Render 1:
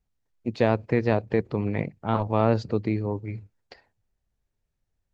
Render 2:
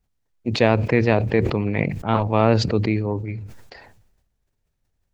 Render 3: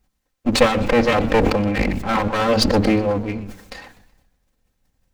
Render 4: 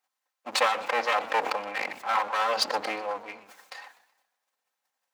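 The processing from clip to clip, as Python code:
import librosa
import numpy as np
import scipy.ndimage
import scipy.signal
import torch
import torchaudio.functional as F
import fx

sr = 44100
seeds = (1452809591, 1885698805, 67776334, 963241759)

y1 = fx.dynamic_eq(x, sr, hz=2500.0, q=1.7, threshold_db=-48.0, ratio=4.0, max_db=6)
y1 = fx.sustainer(y1, sr, db_per_s=52.0)
y1 = y1 * 10.0 ** (3.5 / 20.0)
y2 = fx.lower_of_two(y1, sr, delay_ms=3.8)
y2 = fx.echo_warbled(y2, sr, ms=125, feedback_pct=41, rate_hz=2.8, cents=155, wet_db=-18.0)
y2 = y2 * 10.0 ** (8.0 / 20.0)
y3 = fx.highpass_res(y2, sr, hz=870.0, q=1.5)
y3 = y3 * 10.0 ** (-6.5 / 20.0)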